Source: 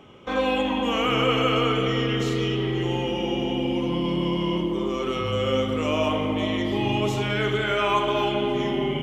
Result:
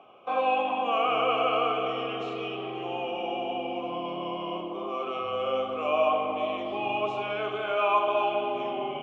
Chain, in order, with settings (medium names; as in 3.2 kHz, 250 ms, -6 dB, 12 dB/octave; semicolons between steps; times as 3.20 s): vowel filter a; treble shelf 6.7 kHz -8 dB; trim +9 dB